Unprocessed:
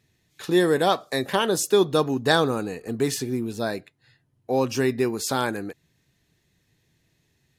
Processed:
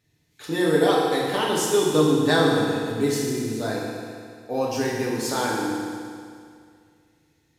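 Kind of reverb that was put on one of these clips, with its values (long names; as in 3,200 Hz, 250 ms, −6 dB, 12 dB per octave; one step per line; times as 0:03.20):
feedback delay network reverb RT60 2.2 s, low-frequency decay 1×, high-frequency decay 0.95×, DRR −4.5 dB
level −5 dB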